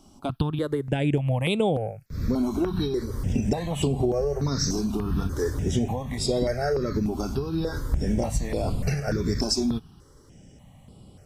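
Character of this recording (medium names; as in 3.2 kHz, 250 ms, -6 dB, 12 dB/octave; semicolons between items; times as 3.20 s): notches that jump at a steady rate 3.4 Hz 490–6000 Hz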